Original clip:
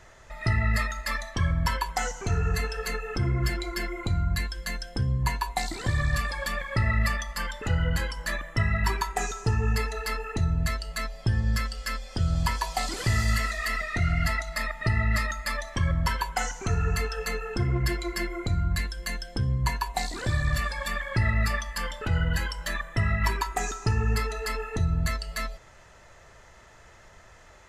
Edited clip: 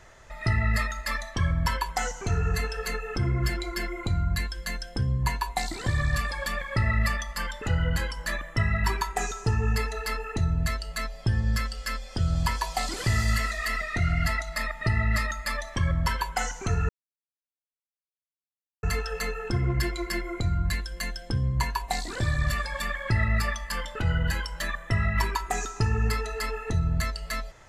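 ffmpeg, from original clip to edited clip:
-filter_complex "[0:a]asplit=2[a][b];[a]atrim=end=16.89,asetpts=PTS-STARTPTS,afade=t=out:st=16.886:d=0.004:c=hsin,apad=pad_dur=1.94[c];[b]atrim=start=16.89,asetpts=PTS-STARTPTS,afade=t=in:d=0.004:c=hsin[d];[c][d]concat=n=2:v=0:a=1"

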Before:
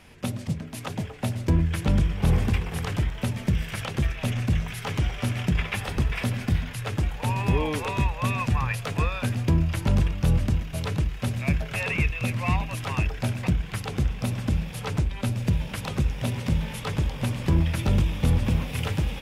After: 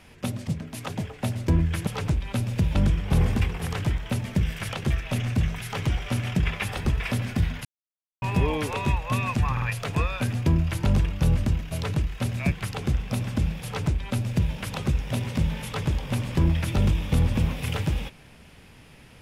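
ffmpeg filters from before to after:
-filter_complex "[0:a]asplit=8[a][b][c][d][e][f][g][h];[a]atrim=end=1.872[i];[b]atrim=start=14.758:end=15.642[j];[c]atrim=start=1.868:end=6.77,asetpts=PTS-STARTPTS,afade=t=out:st=4.898:d=0.004:c=hsin[k];[d]atrim=start=6.77:end=7.34,asetpts=PTS-STARTPTS,volume=0[l];[e]atrim=start=7.34:end=8.692,asetpts=PTS-STARTPTS,afade=t=in:d=0.004:c=hsin[m];[f]atrim=start=8.638:end=8.692[n];[g]atrim=start=8.638:end=11.542[o];[h]atrim=start=13.628[p];[i][j]acrossfade=d=0.004:c1=hsin:c2=hsin[q];[k][l][m]concat=n=3:v=0:a=1[r];[q][r]acrossfade=d=0.004:c1=hsin:c2=hsin[s];[s][n]acrossfade=d=0.004:c1=hsin:c2=hsin[t];[t][o]acrossfade=d=0.004:c1=hsin:c2=hsin[u];[u][p]acrossfade=d=0.004:c1=hsin:c2=hsin"

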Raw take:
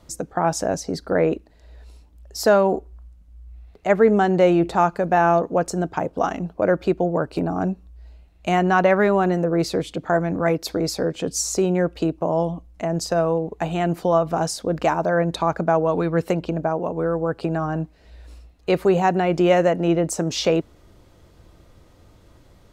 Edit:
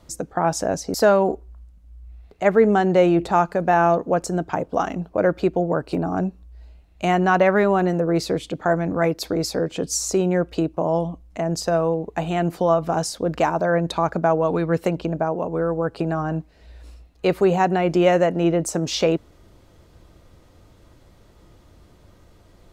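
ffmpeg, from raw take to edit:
-filter_complex "[0:a]asplit=2[a][b];[a]atrim=end=0.942[c];[b]atrim=start=2.378[d];[c][d]acrossfade=d=0.004:c1=hsin:c2=hsin"

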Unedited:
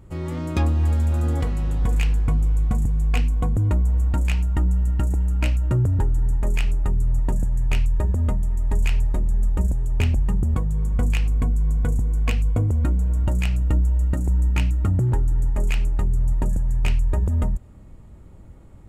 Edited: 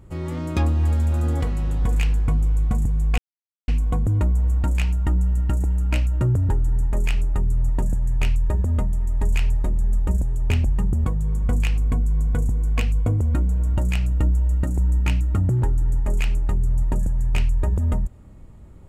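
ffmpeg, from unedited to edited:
-filter_complex "[0:a]asplit=2[a][b];[a]atrim=end=3.18,asetpts=PTS-STARTPTS,afade=t=out:st=3.176:d=0.004:c=hsin,apad=pad_dur=0.5[c];[b]atrim=start=3.18,asetpts=PTS-STARTPTS,afade=t=in:d=0.004:c=hsin[d];[c][d]concat=n=2:v=0:a=1"

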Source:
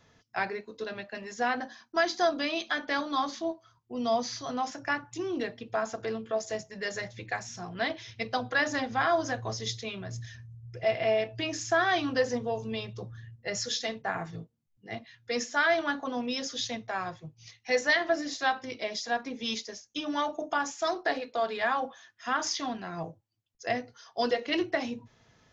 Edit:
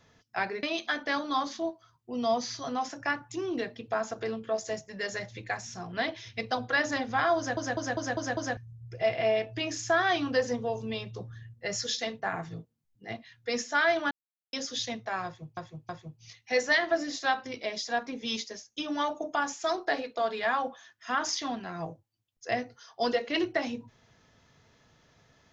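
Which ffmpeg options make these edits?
-filter_complex "[0:a]asplit=12[a][b][c][d][e][f][g][h][i][j][k][l];[a]atrim=end=0.632[m];[b]atrim=start=2.448:end=9.392[n];[c]atrim=start=9.188:end=9.392[o];[d]atrim=start=9.188:end=9.392[p];[e]atrim=start=9.188:end=9.392[q];[f]atrim=start=9.188:end=9.392[r];[g]atrim=start=9.188:end=9.392[s];[h]atrim=start=10.388:end=15.93,asetpts=PTS-STARTPTS,afade=t=out:st=5.538:d=0.004:c=hsin[t];[i]atrim=start=15.93:end=16.35,asetpts=PTS-STARTPTS,volume=0[u];[j]atrim=start=16.35:end=17.392,asetpts=PTS-STARTPTS,afade=t=in:d=0.004:c=hsin[v];[k]atrim=start=17.068:end=17.392[w];[l]atrim=start=17.068[x];[m][n]acrossfade=d=0.004:c1=hsin:c2=hsin[y];[y][o]acrossfade=d=0.004:c1=hsin:c2=hsin[z];[z][p]acrossfade=d=0.004:c1=hsin:c2=hsin[aa];[aa][q]acrossfade=d=0.004:c1=hsin:c2=hsin[ab];[ab][r]acrossfade=d=0.004:c1=hsin:c2=hsin[ac];[ac][s]acrossfade=d=0.004:c1=hsin:c2=hsin[ad];[t][u][v]concat=n=3:v=0:a=1[ae];[ad][ae]acrossfade=d=0.004:c1=hsin:c2=hsin[af];[af][w]acrossfade=d=0.004:c1=hsin:c2=hsin[ag];[ag][x]acrossfade=d=0.004:c1=hsin:c2=hsin"

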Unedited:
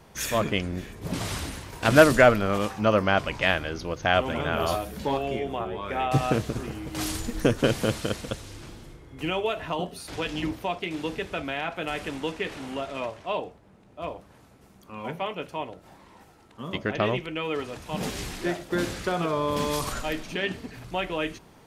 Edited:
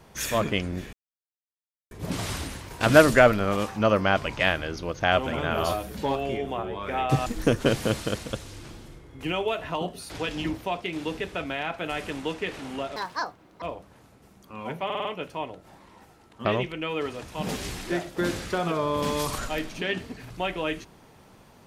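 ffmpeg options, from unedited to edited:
-filter_complex "[0:a]asplit=10[a][b][c][d][e][f][g][h][i][j];[a]atrim=end=0.93,asetpts=PTS-STARTPTS,afade=t=out:st=0.926:d=0.004:c=hsin,apad=pad_dur=0.98[k];[b]atrim=start=0.93:end=6.282,asetpts=PTS-STARTPTS,afade=t=in:d=0.004:c=hsin[l];[c]atrim=start=7.238:end=12.944[m];[d]atrim=start=12.94:end=14.01,asetpts=PTS-STARTPTS,asetrate=71442,aresample=44100[n];[e]atrim=start=14.006:end=15.292[o];[f]atrim=start=15.238:end=15.292[p];[g]atrim=start=15.238:end=15.292[q];[h]atrim=start=15.238:end=15.292[r];[i]atrim=start=15.238:end=16.642[s];[j]atrim=start=16.988[t];[k][l]concat=n=2:v=0:a=1[u];[u][m]acrossfade=d=0.004:c1=hsin:c2=hsin[v];[v][n]acrossfade=d=0.004:c1=hsin:c2=hsin[w];[w][o]acrossfade=d=0.004:c1=hsin:c2=hsin[x];[x][p]acrossfade=d=0.004:c1=hsin:c2=hsin[y];[y][q]acrossfade=d=0.004:c1=hsin:c2=hsin[z];[z][r]acrossfade=d=0.004:c1=hsin:c2=hsin[aa];[aa][s]acrossfade=d=0.004:c1=hsin:c2=hsin[ab];[ab][t]acrossfade=d=0.004:c1=hsin:c2=hsin"

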